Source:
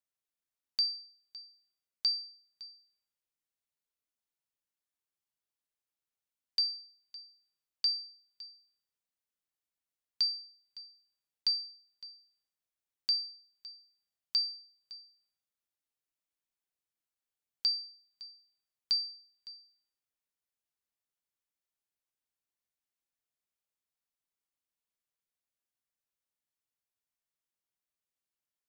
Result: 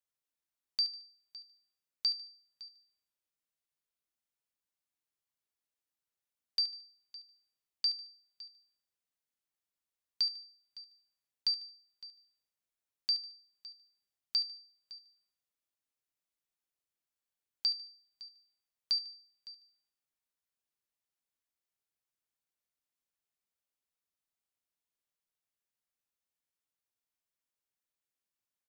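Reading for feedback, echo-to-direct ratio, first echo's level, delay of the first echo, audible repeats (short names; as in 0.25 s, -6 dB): 34%, -14.0 dB, -14.5 dB, 74 ms, 3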